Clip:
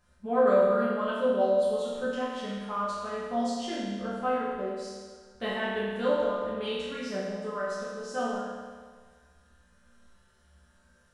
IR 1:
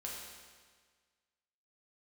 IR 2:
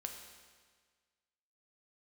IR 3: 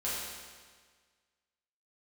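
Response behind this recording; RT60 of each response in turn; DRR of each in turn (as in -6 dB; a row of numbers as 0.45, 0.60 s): 3; 1.6, 1.6, 1.6 s; -4.0, 3.0, -9.5 dB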